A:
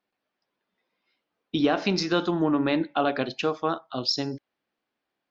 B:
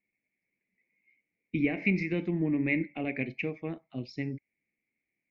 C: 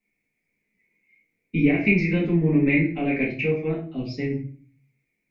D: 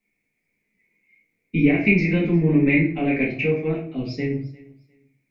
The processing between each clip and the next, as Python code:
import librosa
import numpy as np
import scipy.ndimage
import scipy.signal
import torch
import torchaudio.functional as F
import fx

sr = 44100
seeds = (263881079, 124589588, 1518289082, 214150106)

y1 = fx.curve_eq(x, sr, hz=(190.0, 480.0, 1400.0, 2200.0, 3300.0), db=(0, -10, -28, 12, -25))
y2 = fx.room_shoebox(y1, sr, seeds[0], volume_m3=31.0, walls='mixed', distance_m=1.3)
y3 = fx.echo_feedback(y2, sr, ms=352, feedback_pct=23, wet_db=-22.0)
y3 = y3 * 10.0 ** (2.0 / 20.0)